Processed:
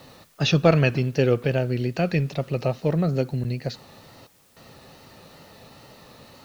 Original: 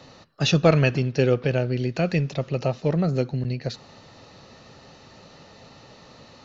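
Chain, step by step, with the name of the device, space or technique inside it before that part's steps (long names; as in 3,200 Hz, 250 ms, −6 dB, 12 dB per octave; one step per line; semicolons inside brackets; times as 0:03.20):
worn cassette (low-pass filter 6,200 Hz; tape wow and flutter; tape dropouts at 0:04.27, 292 ms −16 dB; white noise bed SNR 35 dB)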